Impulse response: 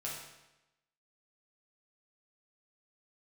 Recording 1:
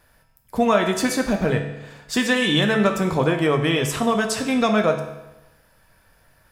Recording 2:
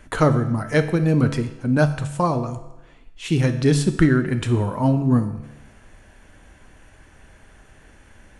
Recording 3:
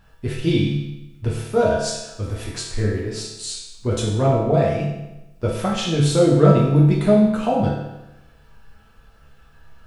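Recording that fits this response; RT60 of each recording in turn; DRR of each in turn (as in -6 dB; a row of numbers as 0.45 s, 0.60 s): 3; 0.95 s, 0.95 s, 0.95 s; 3.0 dB, 7.5 dB, -5.5 dB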